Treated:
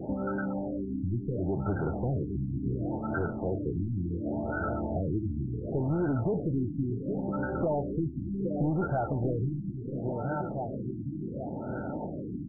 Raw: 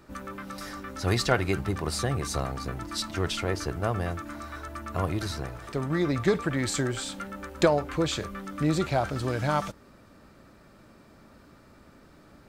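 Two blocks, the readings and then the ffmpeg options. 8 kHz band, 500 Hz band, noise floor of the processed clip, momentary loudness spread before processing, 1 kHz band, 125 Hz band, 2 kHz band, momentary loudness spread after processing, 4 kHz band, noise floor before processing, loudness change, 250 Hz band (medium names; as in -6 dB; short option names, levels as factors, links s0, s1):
under -40 dB, -3.0 dB, -38 dBFS, 13 LU, -5.0 dB, 0.0 dB, -8.0 dB, 7 LU, under -40 dB, -55 dBFS, -3.0 dB, +1.0 dB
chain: -filter_complex "[0:a]bass=f=250:g=13,treble=f=4000:g=-8,asplit=2[s0][s1];[s1]adelay=815,lowpass=f=2000:p=1,volume=0.126,asplit=2[s2][s3];[s3]adelay=815,lowpass=f=2000:p=1,volume=0.49,asplit=2[s4][s5];[s5]adelay=815,lowpass=f=2000:p=1,volume=0.49,asplit=2[s6][s7];[s7]adelay=815,lowpass=f=2000:p=1,volume=0.49[s8];[s2][s4][s6][s8]amix=inputs=4:normalize=0[s9];[s0][s9]amix=inputs=2:normalize=0,asplit=2[s10][s11];[s11]highpass=f=720:p=1,volume=22.4,asoftclip=type=tanh:threshold=0.631[s12];[s10][s12]amix=inputs=2:normalize=0,lowpass=f=5100:p=1,volume=0.501,asuperstop=centerf=1100:order=20:qfactor=2.6,lowshelf=f=79:g=-7.5,acompressor=threshold=0.0251:ratio=3,asoftclip=type=tanh:threshold=0.075,asplit=2[s13][s14];[s14]aecho=0:1:629|1258|1887|2516|3145|3774:0.282|0.149|0.0792|0.042|0.0222|0.0118[s15];[s13][s15]amix=inputs=2:normalize=0,afftfilt=real='re*lt(b*sr/1024,340*pow(1600/340,0.5+0.5*sin(2*PI*0.7*pts/sr)))':imag='im*lt(b*sr/1024,340*pow(1600/340,0.5+0.5*sin(2*PI*0.7*pts/sr)))':win_size=1024:overlap=0.75,volume=1.26"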